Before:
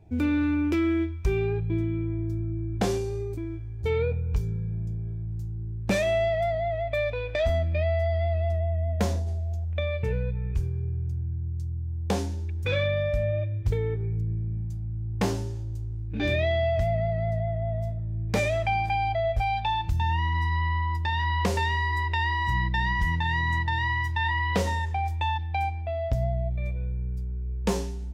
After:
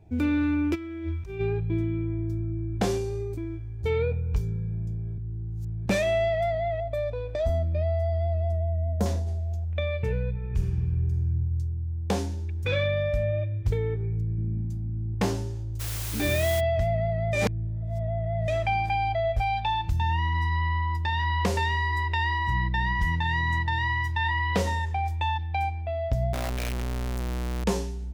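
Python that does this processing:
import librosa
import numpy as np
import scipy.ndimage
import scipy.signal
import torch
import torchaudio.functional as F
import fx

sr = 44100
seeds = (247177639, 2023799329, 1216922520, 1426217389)

y = fx.over_compress(x, sr, threshold_db=-32.0, ratio=-1.0, at=(0.74, 1.39), fade=0.02)
y = fx.peak_eq(y, sr, hz=2400.0, db=-14.0, octaves=1.6, at=(6.8, 9.06))
y = fx.reverb_throw(y, sr, start_s=10.33, length_s=0.95, rt60_s=2.0, drr_db=0.5)
y = fx.quant_float(y, sr, bits=8, at=(13.12, 13.69))
y = fx.peak_eq(y, sr, hz=250.0, db=11.0, octaves=0.88, at=(14.38, 15.15))
y = fx.quant_dither(y, sr, seeds[0], bits=6, dither='triangular', at=(15.79, 16.59), fade=0.02)
y = fx.high_shelf(y, sr, hz=4600.0, db=-6.5, at=(22.38, 23.01))
y = fx.clip_1bit(y, sr, at=(26.33, 27.64))
y = fx.edit(y, sr, fx.reverse_span(start_s=5.18, length_s=0.68),
    fx.reverse_span(start_s=17.33, length_s=1.15), tone=tone)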